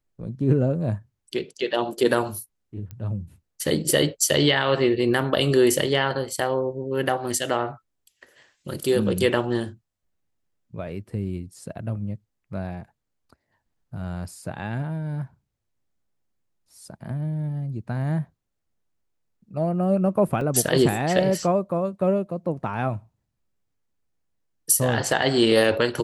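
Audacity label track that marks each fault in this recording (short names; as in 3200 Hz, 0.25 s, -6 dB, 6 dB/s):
2.910000	2.910000	pop -25 dBFS
20.410000	20.410000	gap 2.1 ms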